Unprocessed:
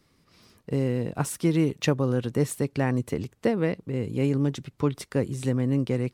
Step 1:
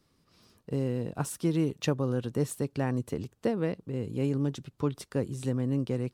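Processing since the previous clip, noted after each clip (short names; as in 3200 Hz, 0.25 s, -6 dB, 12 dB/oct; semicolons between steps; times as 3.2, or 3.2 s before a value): bell 2100 Hz -6 dB 0.41 oct; gain -4.5 dB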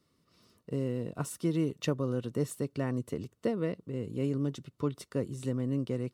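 notch comb 820 Hz; gain -2 dB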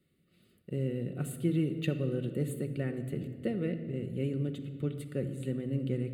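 fixed phaser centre 2400 Hz, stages 4; shoebox room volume 3200 m³, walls mixed, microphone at 1 m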